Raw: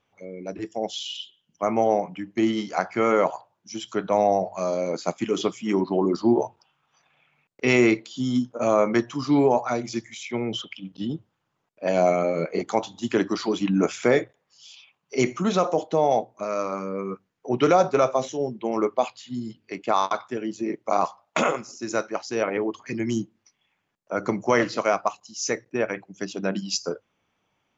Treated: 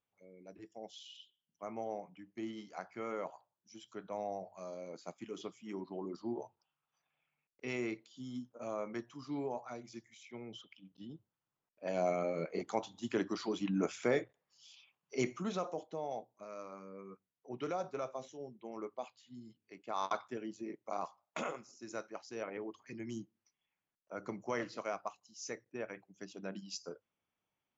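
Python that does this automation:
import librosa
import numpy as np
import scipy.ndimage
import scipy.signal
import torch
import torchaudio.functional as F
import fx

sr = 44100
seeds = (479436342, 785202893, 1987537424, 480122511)

y = fx.gain(x, sr, db=fx.line((11.08, -20.0), (12.22, -12.0), (15.22, -12.0), (15.99, -20.0), (19.88, -20.0), (20.1, -9.5), (20.78, -17.0)))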